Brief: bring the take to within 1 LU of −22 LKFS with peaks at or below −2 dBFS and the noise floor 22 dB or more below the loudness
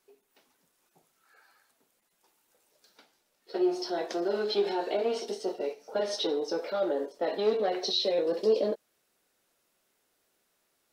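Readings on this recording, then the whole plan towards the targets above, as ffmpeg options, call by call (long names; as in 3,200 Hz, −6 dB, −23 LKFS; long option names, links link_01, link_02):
integrated loudness −30.0 LKFS; sample peak −16.0 dBFS; target loudness −22.0 LKFS
→ -af "volume=8dB"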